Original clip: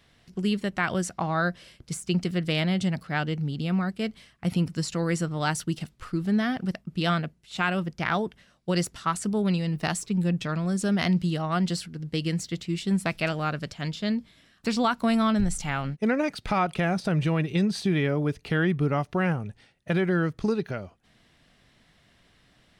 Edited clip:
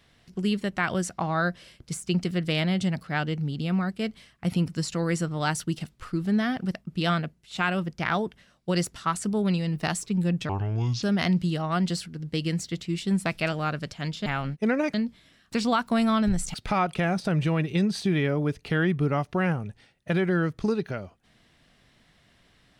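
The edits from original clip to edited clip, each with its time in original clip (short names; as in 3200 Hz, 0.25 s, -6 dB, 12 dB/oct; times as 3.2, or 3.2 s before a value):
10.49–10.83 speed 63%
15.66–16.34 move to 14.06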